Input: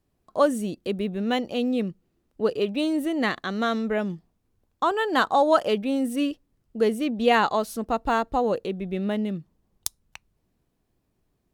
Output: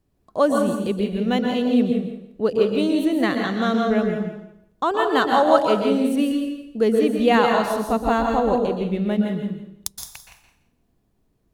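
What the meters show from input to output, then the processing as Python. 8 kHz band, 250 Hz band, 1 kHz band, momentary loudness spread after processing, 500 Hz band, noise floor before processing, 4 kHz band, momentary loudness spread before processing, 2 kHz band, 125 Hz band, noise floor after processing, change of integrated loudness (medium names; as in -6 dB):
+2.0 dB, +6.0 dB, +3.0 dB, 14 LU, +4.5 dB, -74 dBFS, +2.0 dB, 13 LU, +2.0 dB, +6.0 dB, -67 dBFS, +4.5 dB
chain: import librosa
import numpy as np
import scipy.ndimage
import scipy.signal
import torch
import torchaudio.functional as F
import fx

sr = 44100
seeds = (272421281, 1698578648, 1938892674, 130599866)

y = fx.low_shelf(x, sr, hz=440.0, db=4.5)
y = fx.echo_feedback(y, sr, ms=168, feedback_pct=18, wet_db=-9.5)
y = fx.rev_plate(y, sr, seeds[0], rt60_s=0.61, hf_ratio=0.9, predelay_ms=110, drr_db=3.5)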